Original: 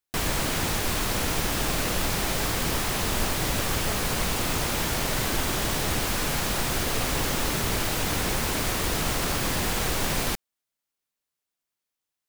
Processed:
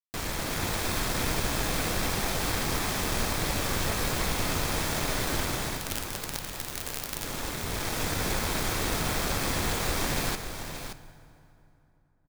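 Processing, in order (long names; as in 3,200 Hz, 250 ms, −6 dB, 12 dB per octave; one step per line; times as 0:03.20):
phase distortion by the signal itself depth 0.12 ms
notch filter 2,900 Hz, Q 14
in parallel at +2 dB: brickwall limiter −21.5 dBFS, peak gain reduction 8 dB
0:05.77–0:07.24: on the sum: log-companded quantiser 2 bits
automatic gain control gain up to 3 dB
dead-zone distortion −33.5 dBFS
single-tap delay 576 ms −9 dB
on a send at −12 dB: convolution reverb RT60 2.9 s, pre-delay 5 ms
on the sum: level −8.5 dB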